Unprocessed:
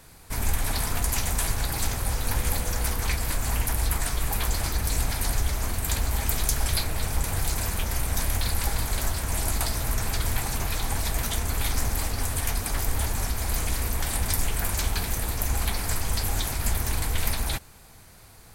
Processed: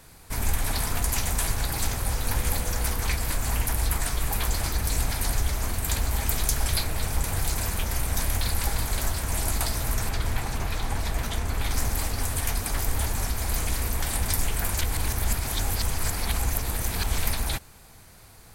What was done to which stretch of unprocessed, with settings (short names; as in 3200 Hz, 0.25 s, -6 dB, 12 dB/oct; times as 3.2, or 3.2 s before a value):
10.09–11.71 high shelf 5700 Hz -10 dB
14.81–17.18 reverse